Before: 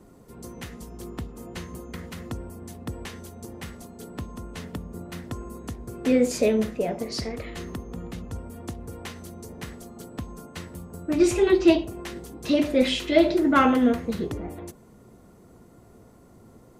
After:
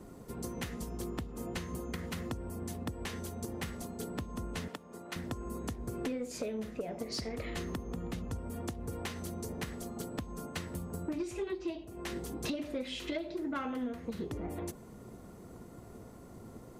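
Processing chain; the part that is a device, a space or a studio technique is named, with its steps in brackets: drum-bus smash (transient shaper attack +4 dB, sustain 0 dB; compression 10:1, threshold -34 dBFS, peak gain reduction 25 dB; saturation -27.5 dBFS, distortion -21 dB); 4.68–5.16 s: frequency weighting A; trim +1 dB

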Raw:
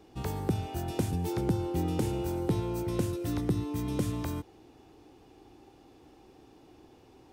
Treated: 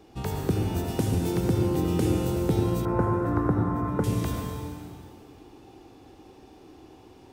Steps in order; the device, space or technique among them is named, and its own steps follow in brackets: stairwell (reverberation RT60 2.3 s, pre-delay 67 ms, DRR 1 dB); 2.85–4.04 s: FFT filter 340 Hz 0 dB, 1.4 kHz +10 dB, 3.2 kHz -20 dB; trim +3 dB

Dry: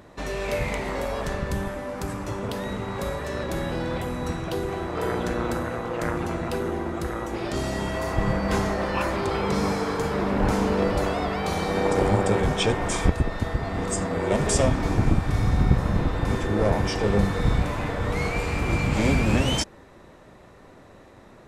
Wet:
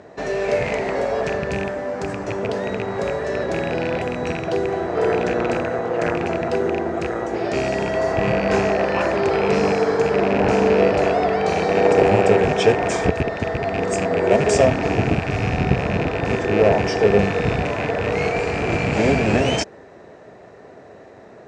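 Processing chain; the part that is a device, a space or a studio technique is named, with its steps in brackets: car door speaker with a rattle (rattle on loud lows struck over -27 dBFS, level -19 dBFS; cabinet simulation 96–7200 Hz, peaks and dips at 430 Hz +9 dB, 680 Hz +9 dB, 1.1 kHz -3 dB, 1.7 kHz +4 dB, 3.5 kHz -5 dB); trim +2.5 dB

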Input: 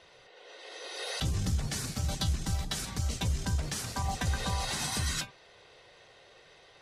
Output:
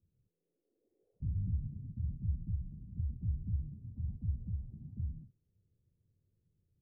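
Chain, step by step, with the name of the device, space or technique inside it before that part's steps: the neighbour's flat through the wall (low-pass 220 Hz 24 dB/octave; peaking EQ 93 Hz +6 dB 0.66 oct); trim -7.5 dB

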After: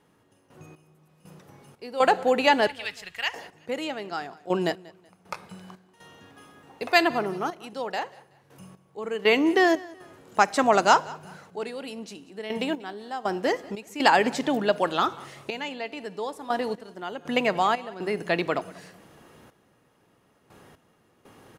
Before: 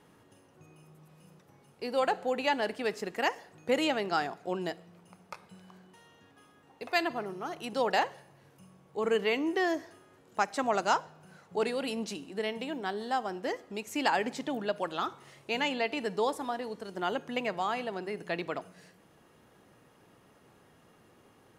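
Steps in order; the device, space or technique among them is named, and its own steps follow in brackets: 2.67–3.34 s: FFT filter 100 Hz 0 dB, 260 Hz -30 dB, 3.3 kHz +1 dB, 5.3 kHz -8 dB; trance gate with a delay (trance gate "..x..xx.xxxxxx.." 60 bpm -12 dB; feedback delay 188 ms, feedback 31%, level -22 dB); trim +9 dB

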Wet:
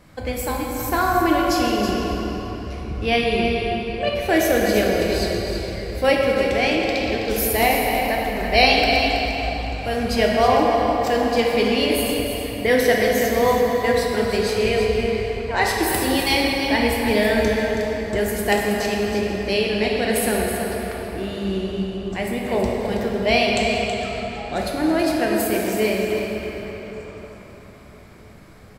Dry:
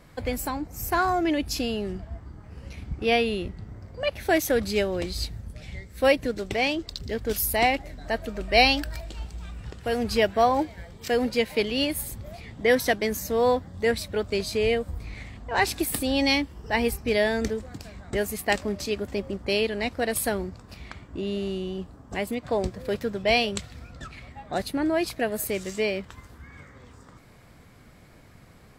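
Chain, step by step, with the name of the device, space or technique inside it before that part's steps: cave (delay 324 ms -8.5 dB; reverberation RT60 4.4 s, pre-delay 4 ms, DRR -2 dB); trim +1.5 dB

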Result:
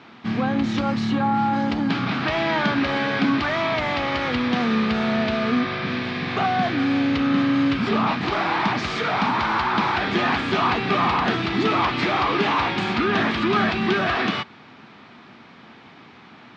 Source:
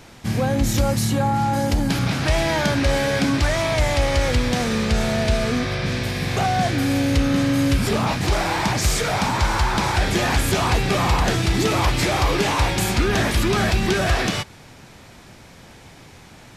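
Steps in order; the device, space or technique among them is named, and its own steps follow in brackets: kitchen radio (cabinet simulation 200–3900 Hz, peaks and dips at 230 Hz +6 dB, 540 Hz -7 dB, 1.2 kHz +6 dB)

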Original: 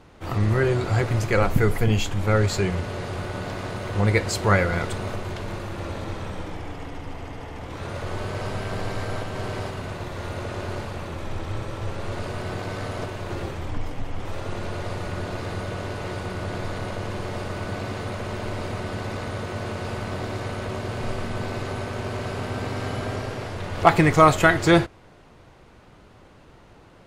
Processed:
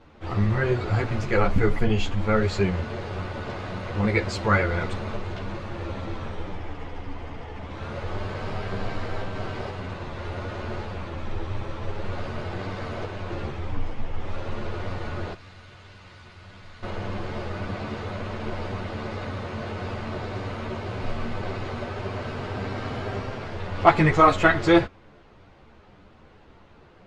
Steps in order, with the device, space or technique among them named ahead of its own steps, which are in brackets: 15.33–16.83 s: amplifier tone stack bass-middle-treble 5-5-5; string-machine ensemble chorus (three-phase chorus; low-pass 4.6 kHz 12 dB/octave); trim +1.5 dB

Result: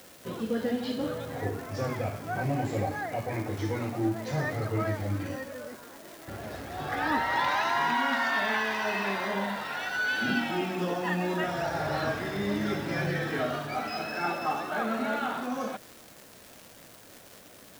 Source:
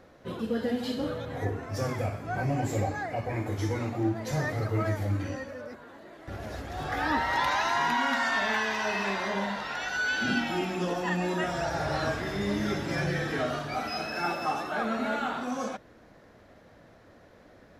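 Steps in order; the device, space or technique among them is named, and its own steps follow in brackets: 78 rpm shellac record (band-pass 100–4900 Hz; crackle 350 per s -38 dBFS; white noise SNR 25 dB)

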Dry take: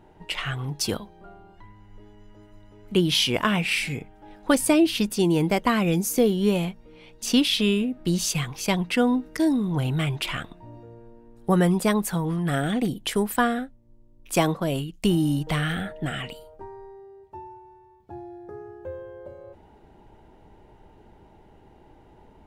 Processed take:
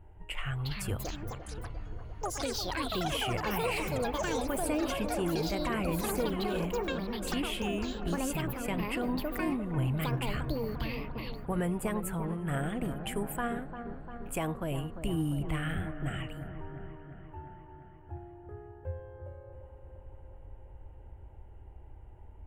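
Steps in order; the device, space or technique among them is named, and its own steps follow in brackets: high-order bell 4.7 kHz -14 dB 1 oct; ever faster or slower copies 459 ms, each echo +7 st, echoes 3; car stereo with a boomy subwoofer (resonant low shelf 120 Hz +14 dB, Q 1.5; peak limiter -14.5 dBFS, peak gain reduction 9 dB); feedback echo behind a low-pass 348 ms, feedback 68%, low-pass 1.4 kHz, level -9 dB; trim -8.5 dB

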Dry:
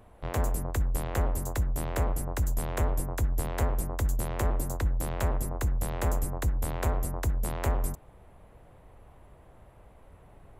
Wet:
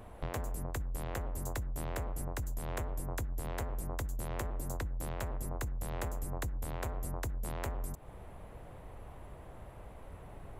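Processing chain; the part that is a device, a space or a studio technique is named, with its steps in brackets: serial compression, leveller first (compression, threshold -27 dBFS, peak gain reduction 6 dB; compression 6:1, threshold -39 dBFS, peak gain reduction 12 dB); trim +4.5 dB

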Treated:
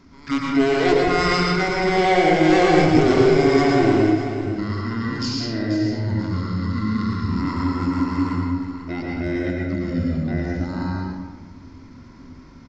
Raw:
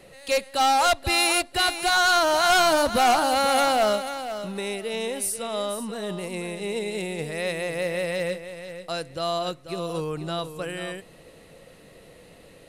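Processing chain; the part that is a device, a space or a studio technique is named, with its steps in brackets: monster voice (pitch shift -11.5 st; bass shelf 230 Hz +6 dB; reverberation RT60 1.3 s, pre-delay 98 ms, DRR -3 dB); trim -2 dB

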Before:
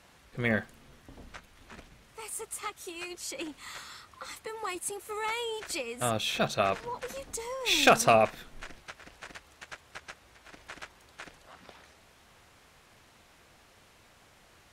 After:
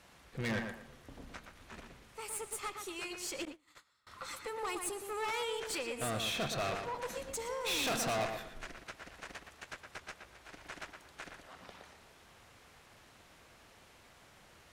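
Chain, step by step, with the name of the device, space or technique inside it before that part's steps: rockabilly slapback (valve stage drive 32 dB, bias 0.45; tape echo 118 ms, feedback 32%, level -4.5 dB, low-pass 2.8 kHz); 3.45–4.07 s: gate -41 dBFS, range -28 dB

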